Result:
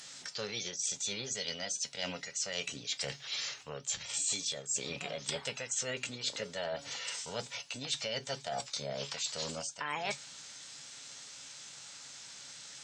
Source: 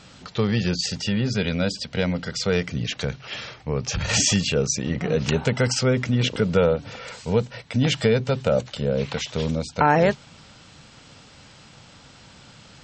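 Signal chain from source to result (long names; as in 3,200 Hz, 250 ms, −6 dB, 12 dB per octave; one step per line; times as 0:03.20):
spectral tilt +4.5 dB per octave
reversed playback
downward compressor 5 to 1, threshold −27 dBFS, peak gain reduction 18 dB
reversed playback
tuned comb filter 140 Hz, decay 0.16 s, harmonics all, mix 60%
formants moved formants +4 semitones
level −2 dB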